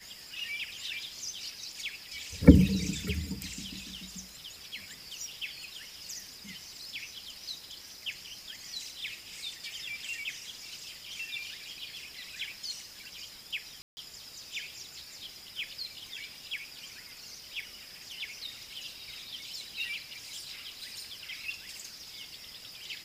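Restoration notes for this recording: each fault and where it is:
13.82–13.97 s: dropout 150 ms

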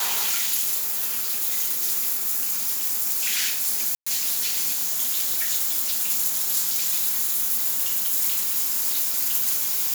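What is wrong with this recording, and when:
0.77–1.44 s: clipped -21 dBFS
3.95–4.07 s: dropout 115 ms

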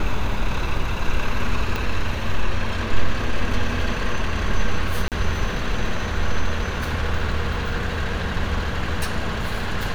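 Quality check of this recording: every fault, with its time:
1.76 s: pop
5.08–5.12 s: dropout 38 ms

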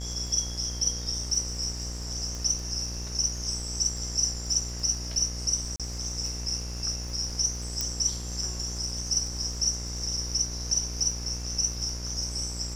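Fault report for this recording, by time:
buzz 60 Hz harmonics 36 -36 dBFS
crackle 67 per s -38 dBFS
2.35 s: pop
5.76–5.80 s: dropout 37 ms
7.81 s: pop -13 dBFS

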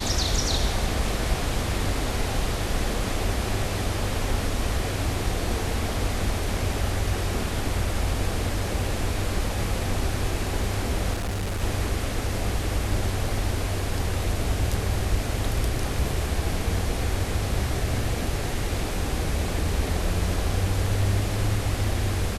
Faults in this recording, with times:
11.13–11.62 s: clipped -24.5 dBFS

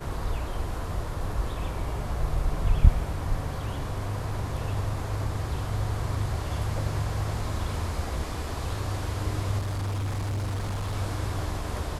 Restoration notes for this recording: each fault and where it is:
9.58–10.96 s: clipped -26.5 dBFS

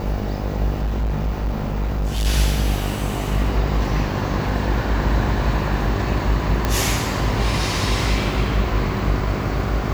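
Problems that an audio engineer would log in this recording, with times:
buzz 50 Hz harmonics 16 -25 dBFS
0.77–2.27 s: clipped -18 dBFS
6.65 s: pop -6 dBFS

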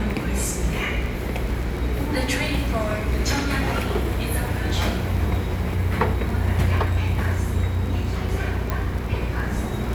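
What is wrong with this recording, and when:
crackle 17 per s -28 dBFS
hum 60 Hz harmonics 8 -28 dBFS
8.70 s: pop -11 dBFS

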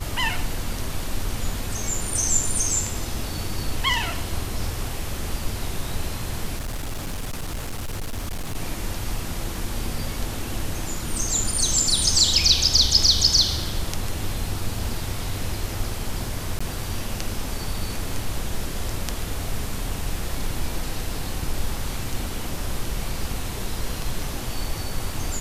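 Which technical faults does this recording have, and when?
6.55–8.56 s: clipped -25 dBFS
16.59–16.61 s: dropout 15 ms

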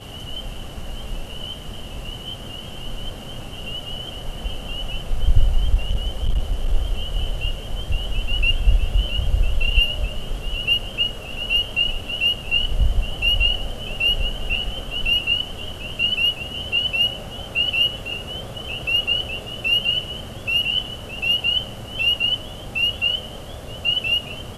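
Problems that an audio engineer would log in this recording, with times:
5.74–6.74 s: clipped -15 dBFS

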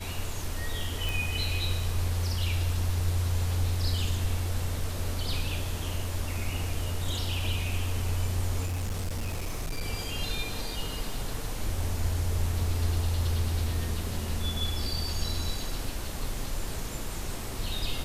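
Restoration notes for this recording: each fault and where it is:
1.09 s: pop
8.65–9.82 s: clipped -27.5 dBFS

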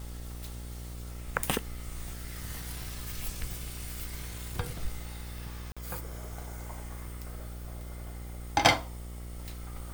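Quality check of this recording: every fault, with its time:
buzz 60 Hz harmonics 14 -41 dBFS
5.72–5.77 s: dropout 46 ms

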